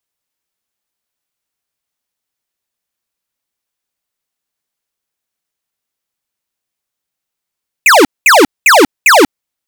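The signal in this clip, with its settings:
repeated falling chirps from 2,700 Hz, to 250 Hz, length 0.19 s square, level −5 dB, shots 4, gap 0.21 s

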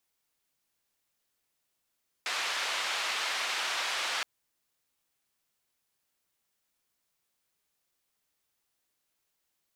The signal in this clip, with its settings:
band-limited noise 820–3,600 Hz, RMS −32.5 dBFS 1.97 s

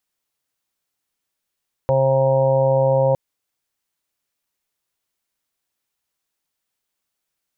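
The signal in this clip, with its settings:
steady harmonic partials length 1.26 s, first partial 134 Hz, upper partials −17/−13/5/−8/−8.5/−6.5 dB, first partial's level −20 dB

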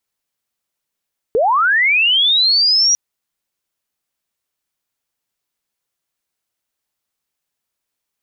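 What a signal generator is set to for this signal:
glide linear 410 Hz → 5,800 Hz −11 dBFS → −10 dBFS 1.60 s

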